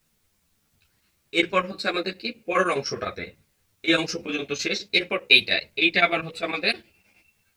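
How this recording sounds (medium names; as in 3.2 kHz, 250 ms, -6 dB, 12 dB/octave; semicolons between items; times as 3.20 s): chopped level 9.8 Hz, depth 65%, duty 75%; a quantiser's noise floor 12-bit, dither triangular; a shimmering, thickened sound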